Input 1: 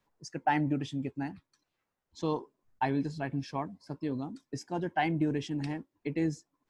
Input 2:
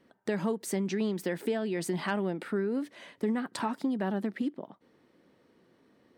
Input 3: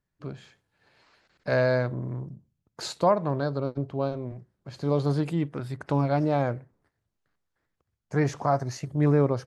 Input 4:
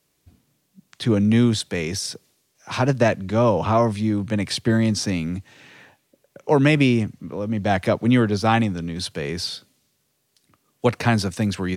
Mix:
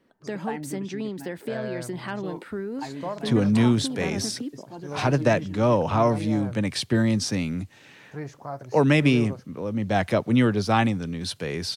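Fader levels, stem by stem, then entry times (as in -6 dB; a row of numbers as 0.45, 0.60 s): -6.5, -1.5, -11.0, -2.5 dB; 0.00, 0.00, 0.00, 2.25 s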